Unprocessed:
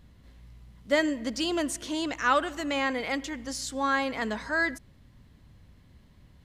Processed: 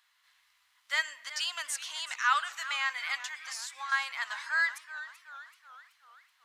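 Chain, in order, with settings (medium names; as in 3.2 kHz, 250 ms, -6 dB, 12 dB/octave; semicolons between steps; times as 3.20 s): inverse Chebyshev high-pass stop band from 420 Hz, stop band 50 dB; 3.37–3.92 s: compression, threshold -37 dBFS, peak gain reduction 11 dB; modulated delay 381 ms, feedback 52%, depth 154 cents, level -14 dB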